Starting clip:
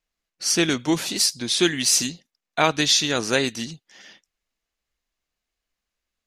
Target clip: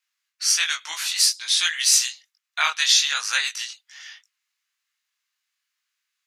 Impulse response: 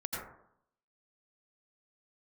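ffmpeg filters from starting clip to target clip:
-filter_complex "[0:a]asplit=2[link_01][link_02];[link_02]acompressor=threshold=-31dB:ratio=6,volume=-3dB[link_03];[link_01][link_03]amix=inputs=2:normalize=0,flanger=delay=18.5:depth=5.1:speed=1.2,highpass=frequency=1200:width=0.5412,highpass=frequency=1200:width=1.3066,volume=4dB"

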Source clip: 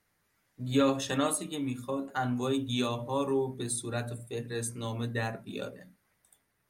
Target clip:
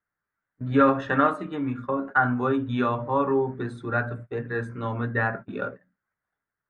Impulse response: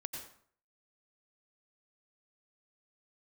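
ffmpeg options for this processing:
-af "agate=range=-20dB:threshold=-43dB:ratio=16:detection=peak,lowpass=frequency=1500:width_type=q:width=3.5,volume=5dB"

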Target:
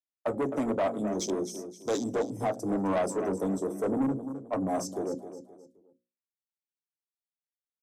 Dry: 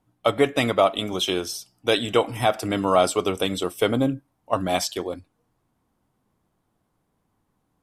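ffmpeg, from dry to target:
ffmpeg -i in.wav -filter_complex "[0:a]flanger=delay=6.8:depth=7.8:regen=-63:speed=0.44:shape=sinusoidal,acrossover=split=370|3000[link_01][link_02][link_03];[link_01]acompressor=threshold=-27dB:ratio=1.5[link_04];[link_04][link_02][link_03]amix=inputs=3:normalize=0,afwtdn=0.0316,firequalizer=gain_entry='entry(180,0);entry(400,-7);entry(2800,-30);entry(6200,6)':delay=0.05:min_phase=1,agate=range=-33dB:threshold=-54dB:ratio=3:detection=peak,acrossover=split=100[link_05][link_06];[link_06]aeval=exprs='0.15*sin(PI/2*2.24*val(0)/0.15)':channel_layout=same[link_07];[link_05][link_07]amix=inputs=2:normalize=0,acrossover=split=190 6700:gain=0.2 1 0.251[link_08][link_09][link_10];[link_08][link_09][link_10]amix=inputs=3:normalize=0,aecho=1:1:261|522|783:0.237|0.0806|0.0274,asoftclip=type=tanh:threshold=-22dB,bandreject=frequency=60:width_type=h:width=6,bandreject=frequency=120:width_type=h:width=6,bandreject=frequency=180:width_type=h:width=6,bandreject=frequency=240:width_type=h:width=6,bandreject=frequency=300:width_type=h:width=6,bandreject=frequency=360:width_type=h:width=6,bandreject=frequency=420:width_type=h:width=6,bandreject=frequency=480:width_type=h:width=6,bandreject=frequency=540:width_type=h:width=6" out.wav

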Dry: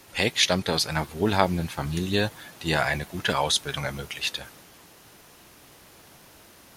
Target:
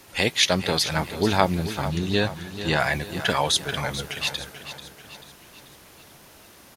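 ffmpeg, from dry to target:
ffmpeg -i in.wav -filter_complex "[0:a]aecho=1:1:438|876|1314|1752|2190:0.251|0.123|0.0603|0.0296|0.0145,asettb=1/sr,asplit=3[link_01][link_02][link_03];[link_01]atrim=end=1.884[link_04];[link_02]atrim=start=1.88:end=2.8,asetpts=PTS-STARTPTS,afade=type=in:duration=0.004:curve=qsin,afade=type=out:start_time=0.916:duration=0.004:curve=qsin,acrossover=split=7000[link_05][link_06];[link_06]acompressor=threshold=-54dB:ratio=4:attack=1:release=60[link_07];[link_05][link_07]amix=inputs=2:normalize=0[link_08];[link_03]atrim=start=2.796[link_09];[link_04][link_08]acrossfade=duration=0.004:curve1=hsin:curve2=qsin[link_10];[link_10][link_09]acrossfade=duration=0.004:curve1=qsin:curve2=hsin,volume=1.5dB" out.wav

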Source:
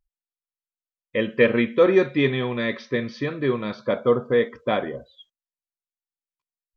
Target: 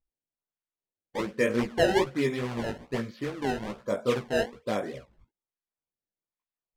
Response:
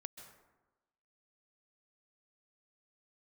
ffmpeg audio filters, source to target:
-af "acrusher=samples=22:mix=1:aa=0.000001:lfo=1:lforange=35.2:lforate=1.2,flanger=delay=15:depth=5.2:speed=2.4,aemphasis=mode=reproduction:type=50fm,volume=-3.5dB"

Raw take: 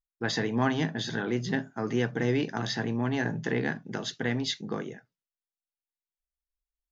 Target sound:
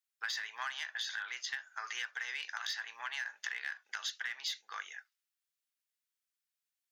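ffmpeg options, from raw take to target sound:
ffmpeg -i in.wav -filter_complex "[0:a]highpass=frequency=1300:width=0.5412,highpass=frequency=1300:width=1.3066,asplit=2[link_01][link_02];[link_02]asoftclip=type=hard:threshold=-30.5dB,volume=-3dB[link_03];[link_01][link_03]amix=inputs=2:normalize=0,acompressor=threshold=-37dB:ratio=6,volume=1dB" out.wav

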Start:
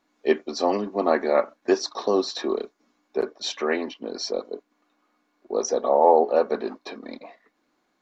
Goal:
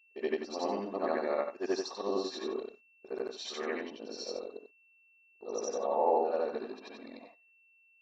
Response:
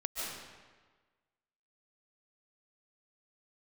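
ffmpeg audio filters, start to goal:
-af "afftfilt=real='re':imag='-im':win_size=8192:overlap=0.75,agate=range=-21dB:threshold=-47dB:ratio=16:detection=peak,aeval=exprs='val(0)+0.00141*sin(2*PI*2700*n/s)':channel_layout=same,volume=-6dB"

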